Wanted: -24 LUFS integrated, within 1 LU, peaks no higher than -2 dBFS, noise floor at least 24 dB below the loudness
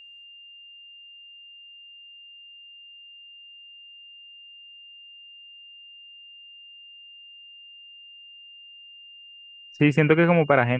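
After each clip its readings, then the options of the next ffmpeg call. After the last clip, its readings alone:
steady tone 2800 Hz; tone level -44 dBFS; loudness -19.5 LUFS; peak -4.5 dBFS; loudness target -24.0 LUFS
-> -af "bandreject=f=2.8k:w=30"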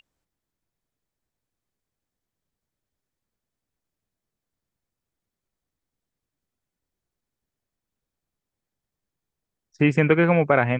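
steady tone none; loudness -19.5 LUFS; peak -4.5 dBFS; loudness target -24.0 LUFS
-> -af "volume=-4.5dB"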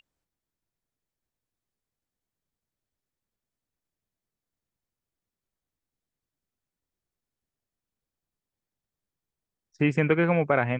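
loudness -24.0 LUFS; peak -9.0 dBFS; noise floor -90 dBFS

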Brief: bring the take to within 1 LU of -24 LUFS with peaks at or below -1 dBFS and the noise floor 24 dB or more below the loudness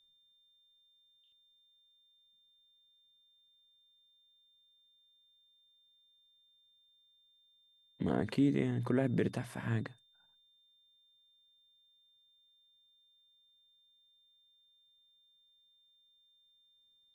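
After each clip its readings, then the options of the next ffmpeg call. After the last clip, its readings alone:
steady tone 3600 Hz; tone level -67 dBFS; loudness -34.0 LUFS; peak -19.0 dBFS; loudness target -24.0 LUFS
-> -af "bandreject=f=3.6k:w=30"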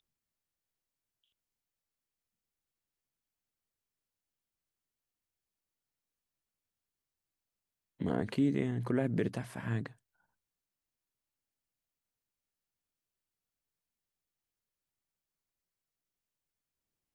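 steady tone none; loudness -34.0 LUFS; peak -19.0 dBFS; loudness target -24.0 LUFS
-> -af "volume=10dB"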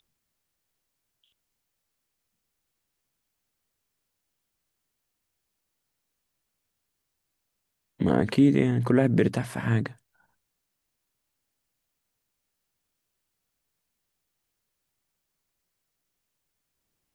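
loudness -24.0 LUFS; peak -9.0 dBFS; noise floor -81 dBFS

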